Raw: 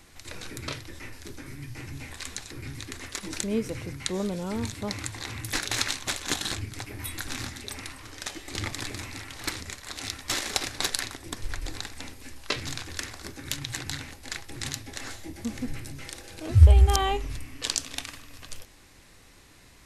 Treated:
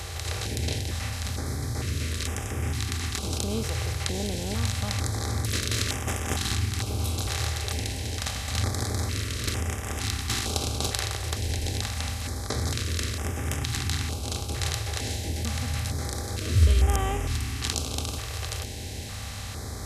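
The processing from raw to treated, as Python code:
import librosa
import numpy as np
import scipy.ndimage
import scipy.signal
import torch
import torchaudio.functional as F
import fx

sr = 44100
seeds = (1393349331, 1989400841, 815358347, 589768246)

y = fx.bin_compress(x, sr, power=0.4)
y = scipy.signal.sosfilt(scipy.signal.butter(2, 54.0, 'highpass', fs=sr, output='sos'), y)
y = fx.filter_held_notch(y, sr, hz=2.2, low_hz=240.0, high_hz=4200.0)
y = y * librosa.db_to_amplitude(-6.0)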